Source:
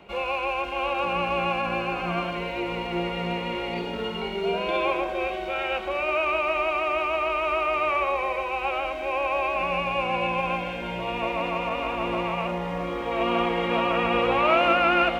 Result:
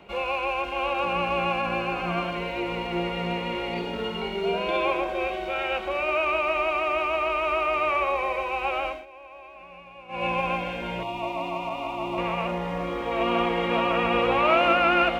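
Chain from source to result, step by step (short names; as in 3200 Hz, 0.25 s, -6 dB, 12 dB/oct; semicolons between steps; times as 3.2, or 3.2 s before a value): 8.87–10.27 dip -19.5 dB, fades 0.19 s; 11.03–12.18 fixed phaser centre 320 Hz, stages 8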